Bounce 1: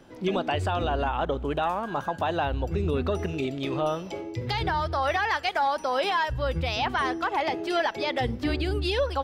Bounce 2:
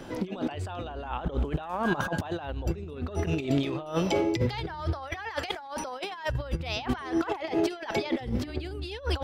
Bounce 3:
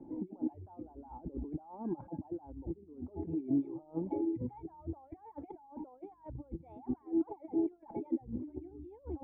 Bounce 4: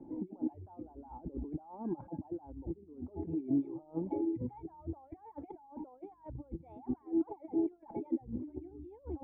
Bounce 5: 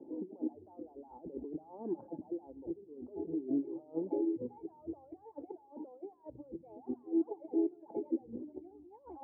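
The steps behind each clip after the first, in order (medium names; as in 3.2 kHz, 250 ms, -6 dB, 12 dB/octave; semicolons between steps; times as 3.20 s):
compressor with a negative ratio -33 dBFS, ratio -0.5; trim +3.5 dB
hum 50 Hz, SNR 30 dB; reverb removal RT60 0.86 s; cascade formant filter u
no audible change
band-pass sweep 460 Hz -> 920 Hz, 8.39–9.03 s; on a send at -21 dB: reverberation RT60 1.1 s, pre-delay 3 ms; on the sum: trim +6 dB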